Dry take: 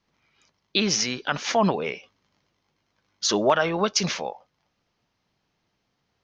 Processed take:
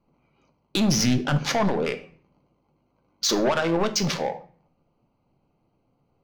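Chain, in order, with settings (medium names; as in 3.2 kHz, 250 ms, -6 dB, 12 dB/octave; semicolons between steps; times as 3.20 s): local Wiener filter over 25 samples; 0.77–1.44 s: tone controls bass +14 dB, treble -1 dB; in parallel at -0.5 dB: compression, threshold -26 dBFS, peak gain reduction 11.5 dB; on the sum: peak limiter -10 dBFS, peak gain reduction 5.5 dB; saturation -19 dBFS, distortion -11 dB; on a send at -7 dB: reverberation RT60 0.45 s, pre-delay 3 ms; on the sum: trim +2 dB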